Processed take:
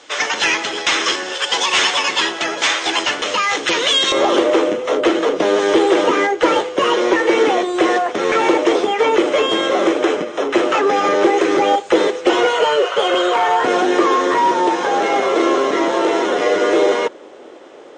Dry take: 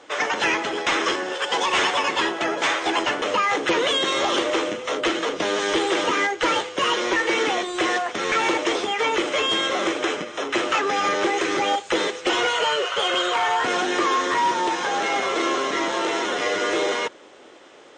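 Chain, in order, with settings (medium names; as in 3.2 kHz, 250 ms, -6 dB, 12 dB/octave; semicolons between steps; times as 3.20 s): peaking EQ 5.2 kHz +10.5 dB 2.5 oct, from 4.12 s 440 Hz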